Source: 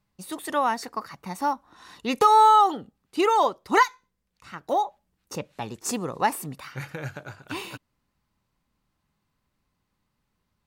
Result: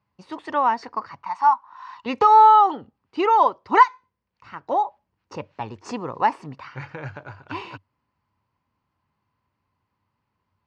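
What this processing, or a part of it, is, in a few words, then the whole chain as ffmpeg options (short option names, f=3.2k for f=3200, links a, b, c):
guitar cabinet: -filter_complex "[0:a]asettb=1/sr,asplit=3[a][b][c];[a]atrim=end=1.234[d];[b]atrim=start=1.23:end=2.06,asetpts=PTS-STARTPTS,afade=t=in:d=0.004:c=qsin,afade=t=out:st=0.826:d=0.004:c=qsin,lowshelf=f=660:t=q:w=3:g=-13[e];[c]atrim=start=2.056[f];[d][e]acrossfade=d=0.004:c1=hsin:c2=qsin[g];[g][f]acrossfade=d=0.004:c1=qsin:c2=hsin,highpass=82,equalizer=f=96:t=q:w=4:g=9,equalizer=f=180:t=q:w=4:g=-5,equalizer=f=970:t=q:w=4:g=8,equalizer=f=3.7k:t=q:w=4:g=-8,lowpass=f=4.6k:w=0.5412,lowpass=f=4.6k:w=1.3066"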